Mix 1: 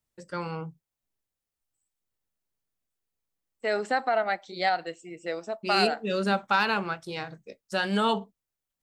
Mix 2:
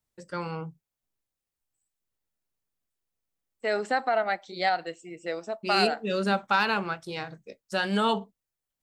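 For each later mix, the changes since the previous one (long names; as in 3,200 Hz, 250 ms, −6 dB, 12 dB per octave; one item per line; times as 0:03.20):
nothing changed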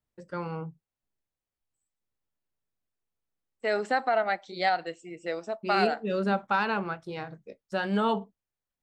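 first voice: add high-shelf EQ 2,400 Hz −10.5 dB
master: add high-shelf EQ 7,100 Hz −6 dB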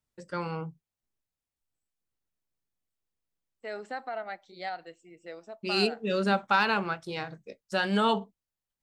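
first voice: add high-shelf EQ 2,400 Hz +10.5 dB
second voice −10.5 dB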